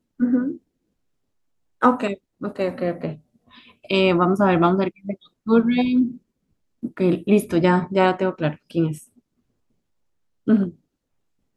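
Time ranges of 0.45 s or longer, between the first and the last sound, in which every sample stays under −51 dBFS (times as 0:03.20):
0:00.58–0:01.81
0:06.18–0:06.83
0:09.19–0:10.47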